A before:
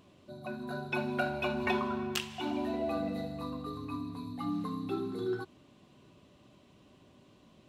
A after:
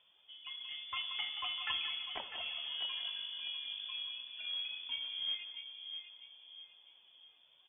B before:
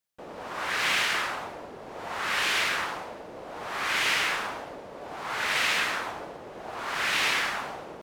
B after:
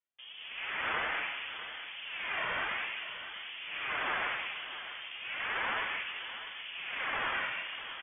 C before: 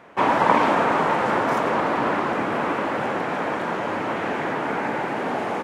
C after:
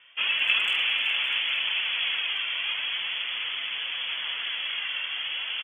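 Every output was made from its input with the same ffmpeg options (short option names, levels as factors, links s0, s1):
-filter_complex "[0:a]flanger=delay=2.3:depth=5:regen=31:speed=0.4:shape=sinusoidal,acrusher=bits=4:mode=log:mix=0:aa=0.000001,asplit=2[s0][s1];[s1]adelay=649,lowpass=f=1700:p=1,volume=0.422,asplit=2[s2][s3];[s3]adelay=649,lowpass=f=1700:p=1,volume=0.4,asplit=2[s4][s5];[s5]adelay=649,lowpass=f=1700:p=1,volume=0.4,asplit=2[s6][s7];[s7]adelay=649,lowpass=f=1700:p=1,volume=0.4,asplit=2[s8][s9];[s9]adelay=649,lowpass=f=1700:p=1,volume=0.4[s10];[s2][s4][s6][s8][s10]amix=inputs=5:normalize=0[s11];[s0][s11]amix=inputs=2:normalize=0,lowpass=f=3100:t=q:w=0.5098,lowpass=f=3100:t=q:w=0.6013,lowpass=f=3100:t=q:w=0.9,lowpass=f=3100:t=q:w=2.563,afreqshift=-3600,asplit=2[s12][s13];[s13]adelay=180,highpass=300,lowpass=3400,asoftclip=type=hard:threshold=0.15,volume=0.316[s14];[s12][s14]amix=inputs=2:normalize=0,volume=0.668"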